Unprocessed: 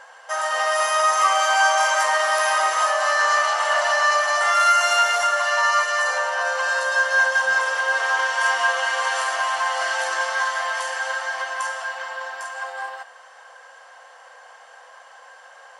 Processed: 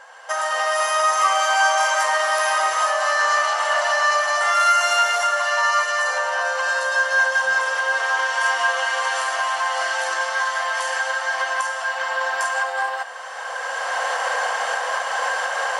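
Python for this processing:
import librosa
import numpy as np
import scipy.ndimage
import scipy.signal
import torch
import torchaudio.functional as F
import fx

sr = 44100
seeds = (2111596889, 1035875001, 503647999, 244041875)

y = fx.recorder_agc(x, sr, target_db=-13.5, rise_db_per_s=14.0, max_gain_db=30)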